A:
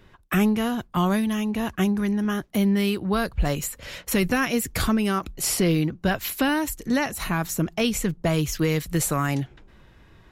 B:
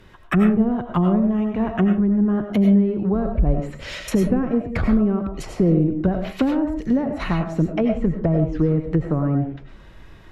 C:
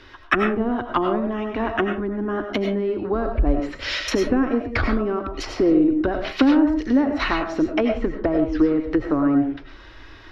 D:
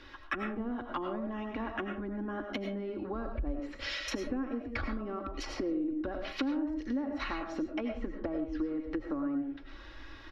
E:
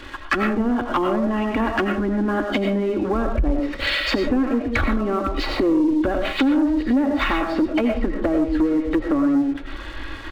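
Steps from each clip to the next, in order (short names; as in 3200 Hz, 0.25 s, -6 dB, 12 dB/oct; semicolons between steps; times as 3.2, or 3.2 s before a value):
treble ducked by the level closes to 510 Hz, closed at -20 dBFS; reverb RT60 0.35 s, pre-delay 60 ms, DRR 4 dB; gain +4.5 dB
EQ curve 110 Hz 0 dB, 170 Hz -19 dB, 280 Hz +7 dB, 480 Hz +1 dB, 720 Hz +3 dB, 1500 Hz +9 dB, 2300 Hz +7 dB, 5400 Hz +11 dB, 7900 Hz -8 dB; gain -1 dB
comb 3.6 ms, depth 42%; compressor 2.5:1, threshold -30 dBFS, peak gain reduction 13.5 dB; gain -6.5 dB
nonlinear frequency compression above 3000 Hz 1.5:1; sample leveller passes 2; gain +8.5 dB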